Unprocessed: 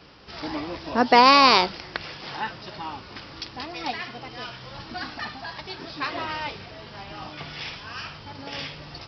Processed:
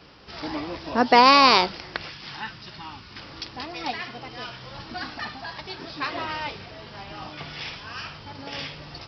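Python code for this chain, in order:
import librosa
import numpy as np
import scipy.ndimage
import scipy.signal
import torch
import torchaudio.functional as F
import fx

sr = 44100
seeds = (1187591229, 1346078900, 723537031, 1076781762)

y = fx.peak_eq(x, sr, hz=560.0, db=-11.0, octaves=1.6, at=(2.09, 3.18))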